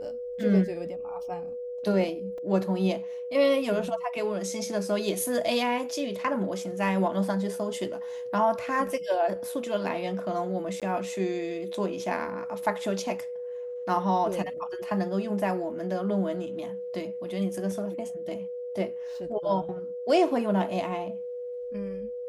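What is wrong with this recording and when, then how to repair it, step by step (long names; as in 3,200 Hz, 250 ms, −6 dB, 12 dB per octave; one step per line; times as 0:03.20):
whistle 490 Hz −33 dBFS
0:02.38: drop-out 2.9 ms
0:10.80–0:10.82: drop-out 17 ms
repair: notch filter 490 Hz, Q 30
repair the gap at 0:02.38, 2.9 ms
repair the gap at 0:10.80, 17 ms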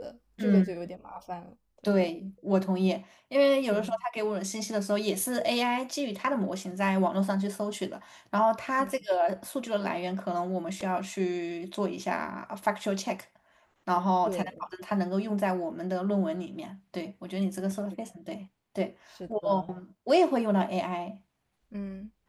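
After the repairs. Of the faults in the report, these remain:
none of them is left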